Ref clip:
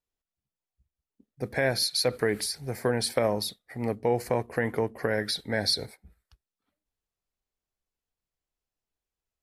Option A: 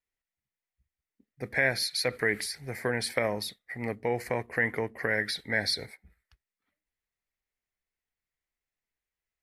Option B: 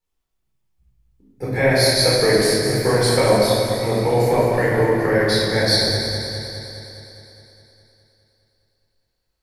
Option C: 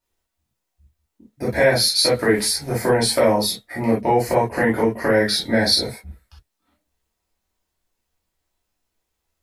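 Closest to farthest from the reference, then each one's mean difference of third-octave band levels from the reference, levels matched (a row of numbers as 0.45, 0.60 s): A, C, B; 2.0, 5.0, 10.5 dB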